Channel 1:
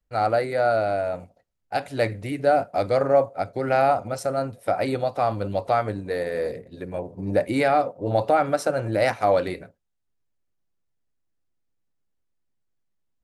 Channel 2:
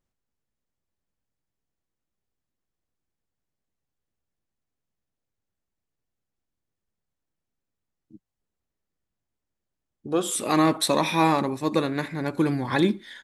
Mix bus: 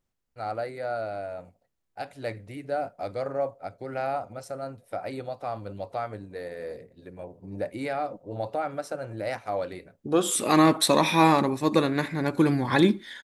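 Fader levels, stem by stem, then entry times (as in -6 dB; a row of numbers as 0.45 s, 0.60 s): -10.0 dB, +1.5 dB; 0.25 s, 0.00 s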